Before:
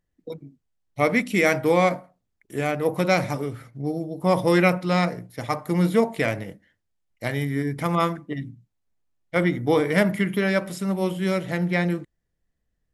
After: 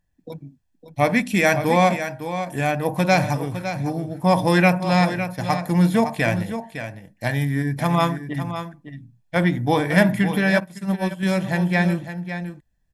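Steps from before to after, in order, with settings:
comb filter 1.2 ms, depth 54%
on a send: single-tap delay 558 ms −10 dB
0:10.60–0:11.23: on the sum: expander for the loud parts 2.5 to 1, over −32 dBFS
level +2.5 dB

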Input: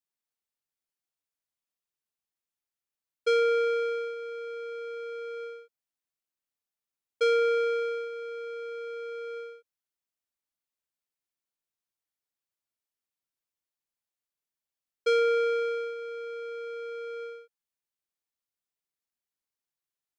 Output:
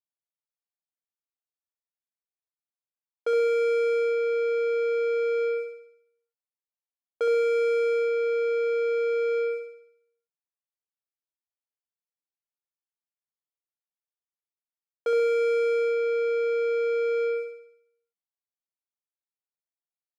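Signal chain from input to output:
leveller curve on the samples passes 5
resonant band-pass 740 Hz, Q 1.1
on a send: flutter between parallel walls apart 11.7 metres, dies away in 0.7 s
on the sum: level +1 dB

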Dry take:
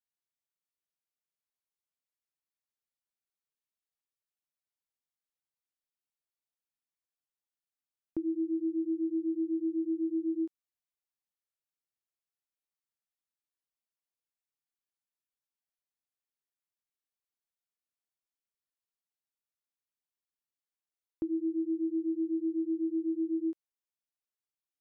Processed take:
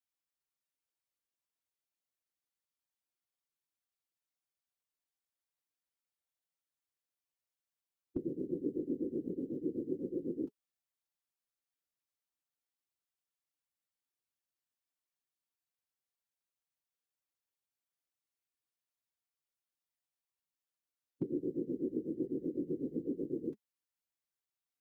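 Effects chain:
formants moved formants −3 semitones
random phases in short frames
notch comb filter 210 Hz

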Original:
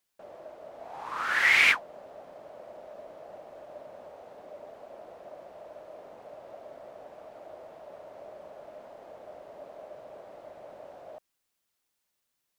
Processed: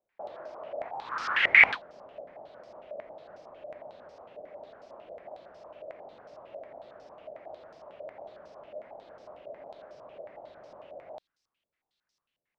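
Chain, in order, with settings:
parametric band 990 Hz +4 dB 2.7 octaves, from 0:00.89 −4 dB
low-pass on a step sequencer 11 Hz 600–5,300 Hz
level −1.5 dB

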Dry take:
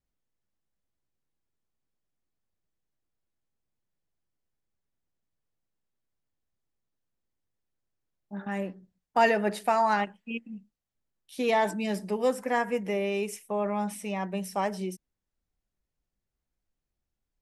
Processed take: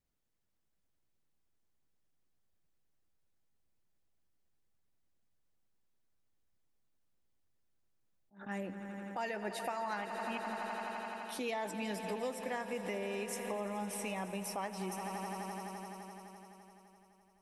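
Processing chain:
harmonic and percussive parts rebalanced harmonic −6 dB
echo that builds up and dies away 85 ms, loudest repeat 5, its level −17 dB
downward compressor 6 to 1, threshold −39 dBFS, peak gain reduction 16 dB
level that may rise only so fast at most 200 dB per second
level +3.5 dB

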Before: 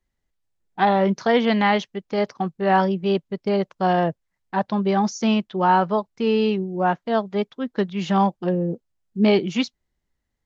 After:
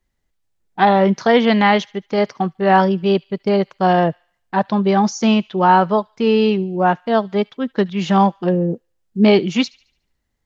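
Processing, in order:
delay with a high-pass on its return 73 ms, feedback 45%, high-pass 1,800 Hz, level −23 dB
level +5 dB

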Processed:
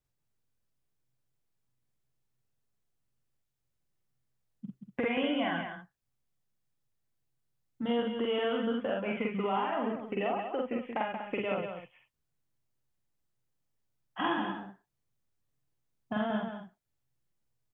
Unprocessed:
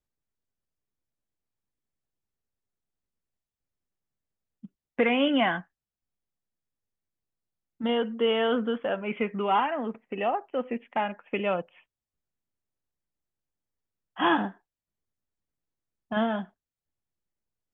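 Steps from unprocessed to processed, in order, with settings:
parametric band 130 Hz +12 dB 0.3 octaves
downward compressor 5 to 1, threshold −32 dBFS, peak gain reduction 12.5 dB
on a send: loudspeakers that aren't time-aligned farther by 16 metres −1 dB, 62 metres −6 dB, 83 metres −11 dB

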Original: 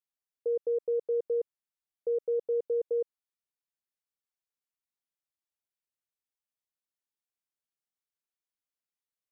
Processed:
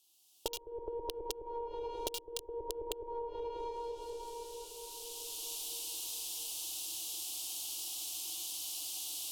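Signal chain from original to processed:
one-sided soft clipper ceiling −33 dBFS
camcorder AGC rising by 12 dB per second
tuned comb filter 250 Hz, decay 0.32 s, harmonics all, mix 30%
on a send: feedback delay with all-pass diffusion 635 ms, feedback 45%, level −9 dB
on the sum: four-comb reverb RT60 1.6 s, combs from 33 ms, DRR 4 dB
treble cut that deepens with the level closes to 550 Hz, closed at −33.5 dBFS
in parallel at −3.5 dB: bit reduction 5 bits
on the sum: drawn EQ curve 130 Hz 0 dB, 200 Hz −27 dB, 320 Hz +12 dB, 490 Hz −8 dB, 750 Hz +7 dB, 1,200 Hz −4 dB, 1,800 Hz −22 dB, 2,900 Hz +15 dB
downward compressor 12 to 1, threshold −49 dBFS, peak gain reduction 24.5 dB
level +13 dB

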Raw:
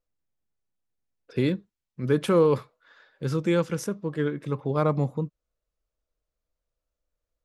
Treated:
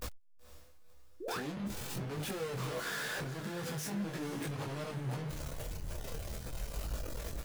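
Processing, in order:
sign of each sample alone
noise reduction from a noise print of the clip's start 24 dB
noise gate −42 dBFS, range −20 dB
low-shelf EQ 230 Hz +7.5 dB
downward compressor 5 to 1, threshold −45 dBFS, peak gain reduction 19 dB
soft clipping −39.5 dBFS, distortion −21 dB
sound drawn into the spectrogram rise, 0:01.20–0:01.40, 310–1,900 Hz −46 dBFS
feedback delay with all-pass diffusion 505 ms, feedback 41%, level −12 dB
micro pitch shift up and down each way 15 cents
level +9.5 dB

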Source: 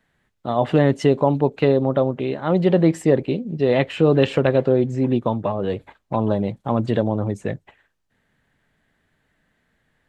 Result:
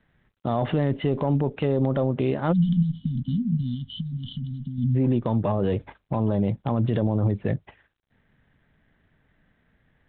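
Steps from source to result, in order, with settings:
one-sided soft clipper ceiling −5.5 dBFS
low-shelf EQ 220 Hz +8.5 dB
brickwall limiter −13.5 dBFS, peak gain reduction 12 dB
0:03.74–0:04.78: downward compressor 8 to 1, threshold −24 dBFS, peak gain reduction 7 dB
0:02.52–0:04.95: time-frequency box erased 270–2,900 Hz
G.726 40 kbit/s 8,000 Hz

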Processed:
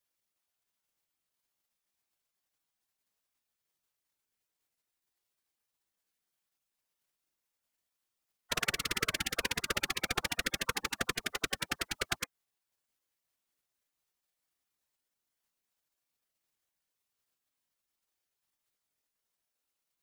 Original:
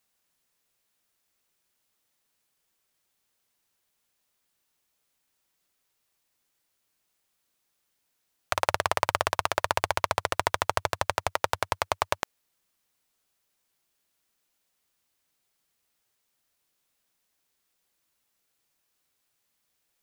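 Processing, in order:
random phases in short frames
gate on every frequency bin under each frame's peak −10 dB weak

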